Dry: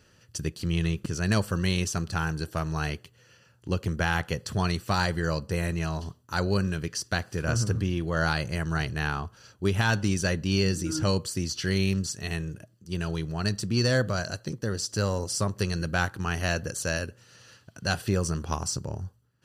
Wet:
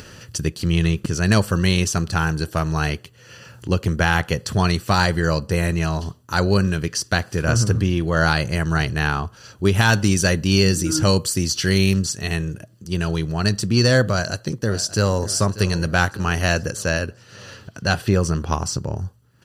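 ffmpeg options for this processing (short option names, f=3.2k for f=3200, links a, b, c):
-filter_complex "[0:a]asettb=1/sr,asplit=3[a][b][c];[a]atrim=end=9.754[d];[b]atrim=start=9.75:end=11.98,asetpts=PTS-STARTPTS,afade=t=in:d=0.004:c=qsin,afade=t=out:st=2.226:d=0.004:c=qsin,highshelf=f=7.6k:g=7[e];[c]atrim=start=11.976[f];[d][e]acrossfade=d=0.004:c1=hsin:c2=qsin[g];[g][f]acrossfade=d=0.004:c1=qsin:c2=hsin,asplit=2[h][i];[i]afade=t=in:st=14.09:d=0.01,afade=t=out:st=15.27:d=0.01,aecho=0:1:590|1180|1770|2360|2950:0.16788|0.0839402|0.0419701|0.0209851|0.0104925[j];[h][j]amix=inputs=2:normalize=0,asettb=1/sr,asplit=3[k][l][m];[k]atrim=end=16.704[n];[l]atrim=start=16.7:end=18.97,asetpts=PTS-STARTPTS,afade=t=in:d=0.004:c=qsin,afade=t=out:st=2.266:d=0.004:c=qsin,equalizer=f=10k:t=o:w=1.6:g=-6.5[o];[m]atrim=start=18.966[p];[n][o]acrossfade=d=0.004:c1=hsin:c2=qsin[q];[q][p]acrossfade=d=0.004:c1=qsin:c2=hsin,acompressor=mode=upward:threshold=-39dB:ratio=2.5,volume=8dB"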